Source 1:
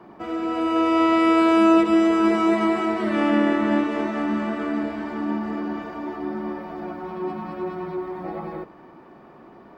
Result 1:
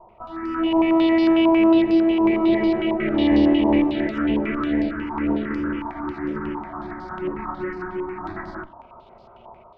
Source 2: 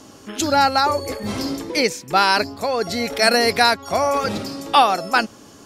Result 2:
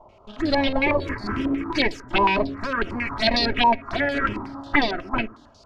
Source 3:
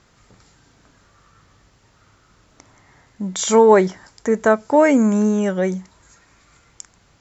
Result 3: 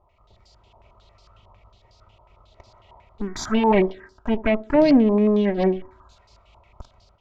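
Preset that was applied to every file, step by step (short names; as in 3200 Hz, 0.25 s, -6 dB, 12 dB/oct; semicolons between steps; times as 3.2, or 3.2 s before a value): minimum comb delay 3.1 ms; tilt shelf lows +4 dB, about 930 Hz; AGC gain up to 6.5 dB; envelope phaser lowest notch 270 Hz, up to 1400 Hz, full sweep at -12 dBFS; on a send: narrowing echo 69 ms, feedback 45%, band-pass 370 Hz, level -19 dB; on the sum: stepped low-pass 11 Hz 960–4700 Hz; gain -4 dB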